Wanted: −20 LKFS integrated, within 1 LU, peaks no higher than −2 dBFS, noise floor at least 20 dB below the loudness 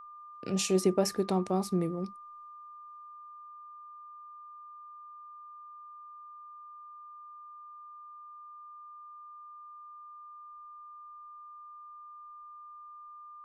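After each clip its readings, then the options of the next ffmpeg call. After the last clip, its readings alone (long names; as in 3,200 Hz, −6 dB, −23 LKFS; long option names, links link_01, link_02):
interfering tone 1,200 Hz; level of the tone −46 dBFS; integrated loudness −30.5 LKFS; sample peak −14.0 dBFS; target loudness −20.0 LKFS
→ -af "bandreject=frequency=1200:width=30"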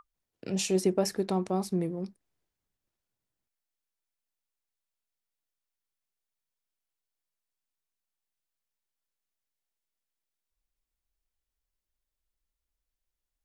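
interfering tone none found; integrated loudness −30.0 LKFS; sample peak −14.0 dBFS; target loudness −20.0 LKFS
→ -af "volume=10dB"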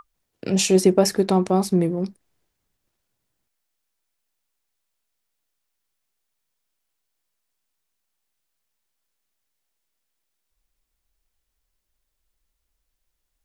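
integrated loudness −20.0 LKFS; sample peak −4.0 dBFS; background noise floor −78 dBFS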